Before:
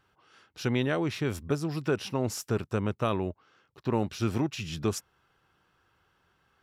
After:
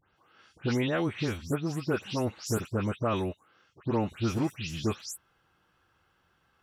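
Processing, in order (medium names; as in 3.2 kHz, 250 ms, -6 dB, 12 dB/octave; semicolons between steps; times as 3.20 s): delay that grows with frequency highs late, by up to 168 ms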